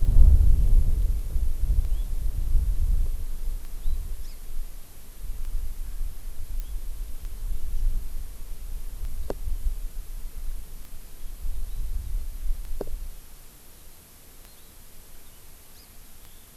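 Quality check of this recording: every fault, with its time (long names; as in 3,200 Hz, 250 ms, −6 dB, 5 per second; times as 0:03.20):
scratch tick 33 1/3 rpm
0:06.60: click −20 dBFS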